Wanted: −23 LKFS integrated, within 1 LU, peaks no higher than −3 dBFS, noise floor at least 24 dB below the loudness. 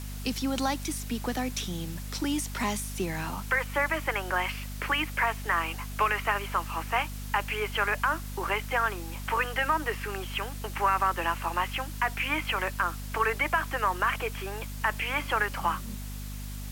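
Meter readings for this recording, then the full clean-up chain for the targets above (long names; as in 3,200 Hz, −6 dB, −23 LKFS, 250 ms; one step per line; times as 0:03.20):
mains hum 50 Hz; hum harmonics up to 250 Hz; level of the hum −35 dBFS; background noise floor −37 dBFS; target noise floor −54 dBFS; integrated loudness −29.5 LKFS; sample peak −13.5 dBFS; target loudness −23.0 LKFS
→ hum removal 50 Hz, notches 5
broadband denoise 17 dB, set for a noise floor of −37 dBFS
level +6.5 dB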